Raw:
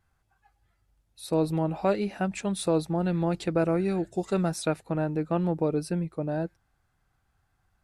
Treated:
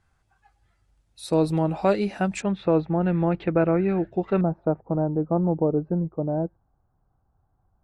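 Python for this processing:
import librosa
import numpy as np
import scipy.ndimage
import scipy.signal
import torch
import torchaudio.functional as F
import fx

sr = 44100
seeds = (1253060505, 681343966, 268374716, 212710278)

y = fx.lowpass(x, sr, hz=fx.steps((0.0, 10000.0), (2.42, 2700.0), (4.41, 1000.0)), slope=24)
y = y * librosa.db_to_amplitude(4.0)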